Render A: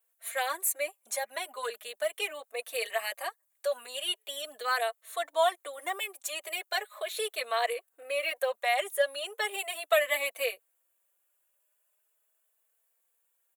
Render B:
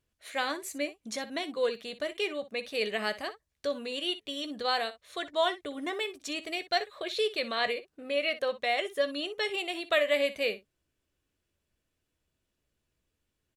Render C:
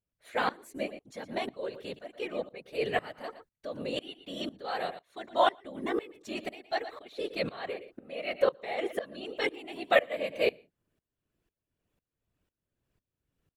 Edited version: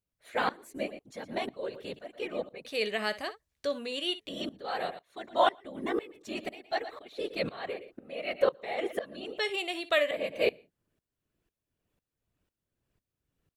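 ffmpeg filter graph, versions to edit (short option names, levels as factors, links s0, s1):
-filter_complex "[1:a]asplit=2[s0][s1];[2:a]asplit=3[s2][s3][s4];[s2]atrim=end=2.652[s5];[s0]atrim=start=2.648:end=4.292[s6];[s3]atrim=start=4.288:end=9.392[s7];[s1]atrim=start=9.388:end=10.112[s8];[s4]atrim=start=10.108[s9];[s5][s6]acrossfade=d=0.004:c1=hsin:c2=hsin[s10];[s10][s7]acrossfade=d=0.004:c1=hsin:c2=hsin[s11];[s11][s8]acrossfade=d=0.004:c1=hsin:c2=hsin[s12];[s12][s9]acrossfade=d=0.004:c1=hsin:c2=hsin"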